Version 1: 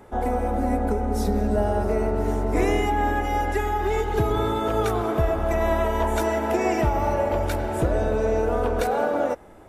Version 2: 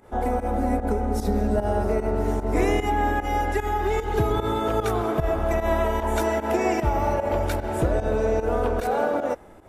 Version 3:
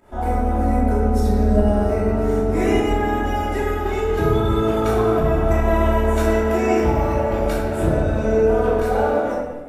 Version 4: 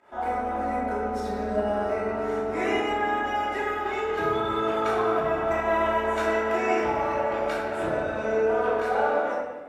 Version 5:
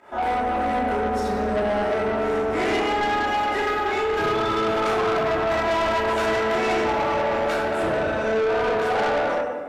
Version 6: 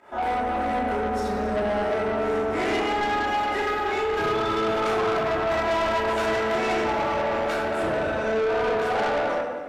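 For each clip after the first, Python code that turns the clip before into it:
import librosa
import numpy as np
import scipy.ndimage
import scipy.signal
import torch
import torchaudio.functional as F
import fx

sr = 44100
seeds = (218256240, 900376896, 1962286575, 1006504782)

y1 = fx.volume_shaper(x, sr, bpm=150, per_beat=1, depth_db=-14, release_ms=97.0, shape='fast start')
y2 = fx.room_shoebox(y1, sr, seeds[0], volume_m3=510.0, walls='mixed', distance_m=2.8)
y2 = y2 * 10.0 ** (-4.0 / 20.0)
y3 = fx.bandpass_q(y2, sr, hz=1600.0, q=0.6)
y4 = 10.0 ** (-27.5 / 20.0) * np.tanh(y3 / 10.0 ** (-27.5 / 20.0))
y4 = y4 * 10.0 ** (8.5 / 20.0)
y5 = y4 + 10.0 ** (-16.5 / 20.0) * np.pad(y4, (int(269 * sr / 1000.0), 0))[:len(y4)]
y5 = y5 * 10.0 ** (-2.0 / 20.0)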